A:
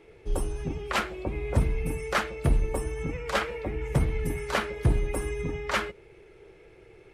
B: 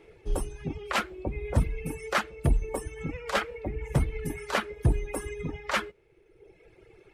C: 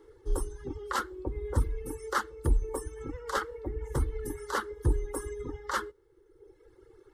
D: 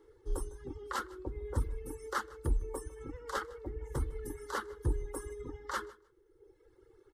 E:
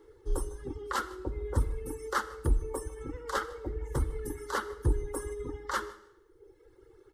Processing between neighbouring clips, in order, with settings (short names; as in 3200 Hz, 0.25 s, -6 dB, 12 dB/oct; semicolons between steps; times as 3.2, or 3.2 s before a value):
reverb removal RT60 1.2 s
fixed phaser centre 660 Hz, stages 6
feedback echo 0.154 s, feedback 16%, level -21.5 dB; gain -5.5 dB
reverb RT60 0.85 s, pre-delay 15 ms, DRR 15 dB; gain +4.5 dB